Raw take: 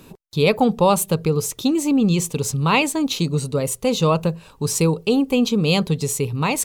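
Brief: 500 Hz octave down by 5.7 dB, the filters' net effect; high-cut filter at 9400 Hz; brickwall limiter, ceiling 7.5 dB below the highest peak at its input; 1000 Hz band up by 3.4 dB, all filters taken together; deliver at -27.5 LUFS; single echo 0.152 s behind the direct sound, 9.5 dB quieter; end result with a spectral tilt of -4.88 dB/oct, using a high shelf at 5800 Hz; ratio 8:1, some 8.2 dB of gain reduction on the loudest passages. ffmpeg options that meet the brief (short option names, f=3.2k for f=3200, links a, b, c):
-af "lowpass=9.4k,equalizer=f=500:t=o:g=-8,equalizer=f=1k:t=o:g=6.5,highshelf=f=5.8k:g=-6.5,acompressor=threshold=-20dB:ratio=8,alimiter=limit=-19dB:level=0:latency=1,aecho=1:1:152:0.335"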